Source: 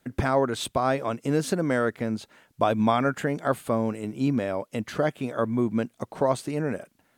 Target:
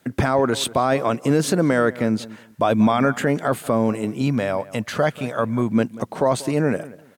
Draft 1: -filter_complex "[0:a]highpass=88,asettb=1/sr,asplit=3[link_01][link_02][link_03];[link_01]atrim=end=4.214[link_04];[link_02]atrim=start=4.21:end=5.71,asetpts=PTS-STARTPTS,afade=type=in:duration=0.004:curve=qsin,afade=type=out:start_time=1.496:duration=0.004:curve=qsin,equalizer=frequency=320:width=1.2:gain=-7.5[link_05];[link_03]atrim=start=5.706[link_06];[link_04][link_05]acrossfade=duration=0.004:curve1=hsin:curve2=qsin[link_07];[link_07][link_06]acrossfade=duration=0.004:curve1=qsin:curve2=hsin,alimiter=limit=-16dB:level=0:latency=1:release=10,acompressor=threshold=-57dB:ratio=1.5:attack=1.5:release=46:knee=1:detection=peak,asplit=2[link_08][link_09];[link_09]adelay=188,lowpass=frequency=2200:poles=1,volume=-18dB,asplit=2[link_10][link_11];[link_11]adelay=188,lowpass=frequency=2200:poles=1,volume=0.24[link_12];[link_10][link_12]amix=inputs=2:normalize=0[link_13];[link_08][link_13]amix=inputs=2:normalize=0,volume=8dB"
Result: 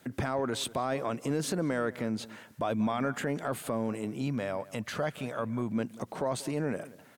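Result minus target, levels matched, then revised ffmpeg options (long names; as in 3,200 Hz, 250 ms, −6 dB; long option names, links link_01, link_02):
downward compressor: peak gain reduction +13 dB
-filter_complex "[0:a]highpass=88,asettb=1/sr,asplit=3[link_01][link_02][link_03];[link_01]atrim=end=4.214[link_04];[link_02]atrim=start=4.21:end=5.71,asetpts=PTS-STARTPTS,afade=type=in:duration=0.004:curve=qsin,afade=type=out:start_time=1.496:duration=0.004:curve=qsin,equalizer=frequency=320:width=1.2:gain=-7.5[link_05];[link_03]atrim=start=5.706[link_06];[link_04][link_05]acrossfade=duration=0.004:curve1=hsin:curve2=qsin[link_07];[link_07][link_06]acrossfade=duration=0.004:curve1=qsin:curve2=hsin,alimiter=limit=-16dB:level=0:latency=1:release=10,asplit=2[link_08][link_09];[link_09]adelay=188,lowpass=frequency=2200:poles=1,volume=-18dB,asplit=2[link_10][link_11];[link_11]adelay=188,lowpass=frequency=2200:poles=1,volume=0.24[link_12];[link_10][link_12]amix=inputs=2:normalize=0[link_13];[link_08][link_13]amix=inputs=2:normalize=0,volume=8dB"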